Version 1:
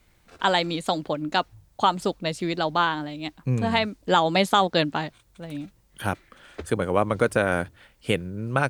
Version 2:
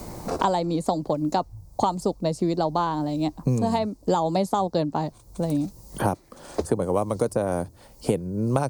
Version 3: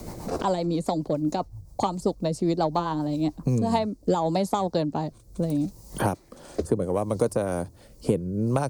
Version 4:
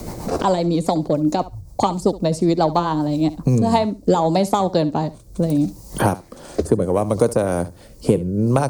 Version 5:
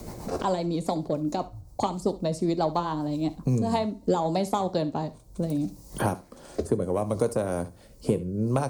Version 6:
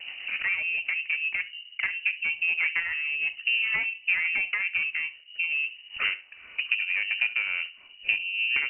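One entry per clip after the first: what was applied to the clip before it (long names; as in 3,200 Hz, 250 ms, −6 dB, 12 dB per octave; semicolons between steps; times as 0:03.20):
flat-topped bell 2,200 Hz −16 dB; multiband upward and downward compressor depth 100%
soft clipping −8 dBFS, distortion −27 dB; rotating-speaker cabinet horn 7.5 Hz, later 0.7 Hz, at 0:03.11; level +1.5 dB
flutter between parallel walls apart 11.8 metres, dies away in 0.24 s; level +7 dB
coupled-rooms reverb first 0.29 s, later 1.6 s, from −28 dB, DRR 11.5 dB; level −8.5 dB
one-sided soft clipper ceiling −20.5 dBFS; voice inversion scrambler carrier 2,900 Hz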